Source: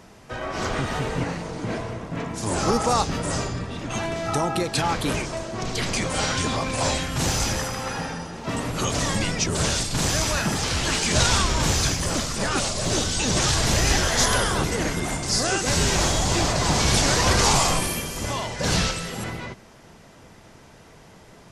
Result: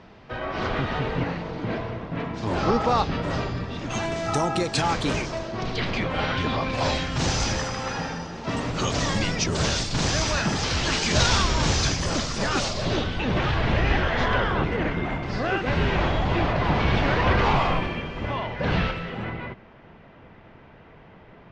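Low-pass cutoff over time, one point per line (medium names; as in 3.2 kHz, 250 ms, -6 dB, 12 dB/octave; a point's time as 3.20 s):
low-pass 24 dB/octave
3.44 s 4.1 kHz
4.07 s 7.8 kHz
4.89 s 7.8 kHz
6.18 s 3.2 kHz
7.25 s 6.1 kHz
12.64 s 6.1 kHz
13.14 s 2.9 kHz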